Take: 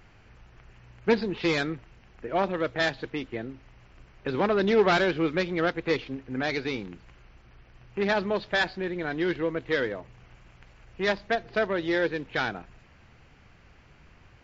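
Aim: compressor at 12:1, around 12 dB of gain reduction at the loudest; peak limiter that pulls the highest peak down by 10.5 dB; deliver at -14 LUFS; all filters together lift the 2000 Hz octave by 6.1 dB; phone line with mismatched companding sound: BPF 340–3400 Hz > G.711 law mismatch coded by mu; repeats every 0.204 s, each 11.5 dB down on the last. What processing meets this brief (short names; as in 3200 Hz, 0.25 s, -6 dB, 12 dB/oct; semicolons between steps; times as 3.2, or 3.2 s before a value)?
bell 2000 Hz +8 dB; compressor 12:1, threshold -28 dBFS; limiter -26 dBFS; BPF 340–3400 Hz; feedback echo 0.204 s, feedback 27%, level -11.5 dB; G.711 law mismatch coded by mu; gain +22 dB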